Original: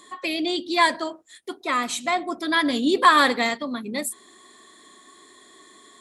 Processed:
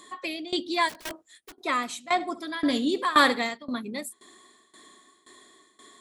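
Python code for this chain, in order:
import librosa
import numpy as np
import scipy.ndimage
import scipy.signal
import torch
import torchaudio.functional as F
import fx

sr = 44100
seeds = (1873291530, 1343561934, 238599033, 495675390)

y = fx.overflow_wrap(x, sr, gain_db=27.5, at=(0.88, 1.52), fade=0.02)
y = fx.tremolo_shape(y, sr, shape='saw_down', hz=1.9, depth_pct=90)
y = fx.room_flutter(y, sr, wall_m=11.7, rt60_s=0.25, at=(2.19, 3.45), fade=0.02)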